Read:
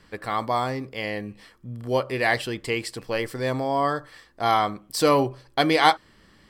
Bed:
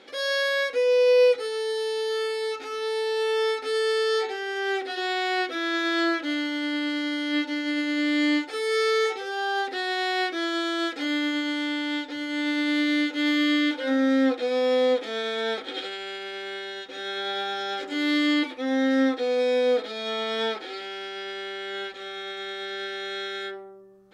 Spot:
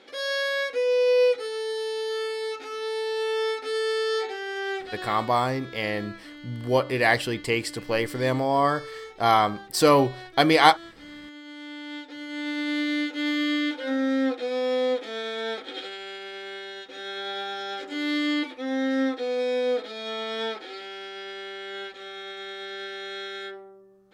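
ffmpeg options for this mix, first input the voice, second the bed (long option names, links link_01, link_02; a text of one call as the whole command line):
ffmpeg -i stem1.wav -i stem2.wav -filter_complex "[0:a]adelay=4800,volume=1.5dB[link_01];[1:a]volume=12dB,afade=type=out:start_time=4.58:duration=0.73:silence=0.177828,afade=type=in:start_time=11.39:duration=1.34:silence=0.199526[link_02];[link_01][link_02]amix=inputs=2:normalize=0" out.wav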